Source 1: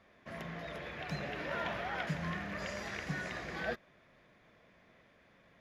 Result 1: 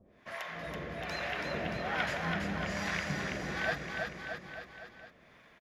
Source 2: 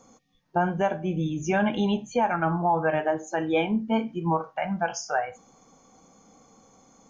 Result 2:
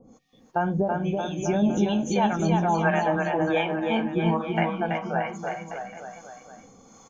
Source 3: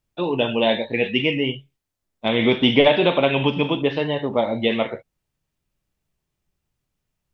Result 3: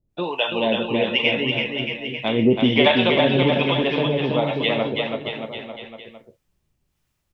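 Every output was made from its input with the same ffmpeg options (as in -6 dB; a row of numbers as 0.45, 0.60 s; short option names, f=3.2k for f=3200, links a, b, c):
-filter_complex "[0:a]asplit=2[a][b];[b]acompressor=threshold=-28dB:ratio=6,volume=-0.5dB[c];[a][c]amix=inputs=2:normalize=0,acrossover=split=580[d][e];[d]aeval=exprs='val(0)*(1-1/2+1/2*cos(2*PI*1.2*n/s))':c=same[f];[e]aeval=exprs='val(0)*(1-1/2-1/2*cos(2*PI*1.2*n/s))':c=same[g];[f][g]amix=inputs=2:normalize=0,aecho=1:1:330|627|894.3|1135|1351:0.631|0.398|0.251|0.158|0.1,volume=1.5dB"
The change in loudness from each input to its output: +3.5, +1.5, 0.0 LU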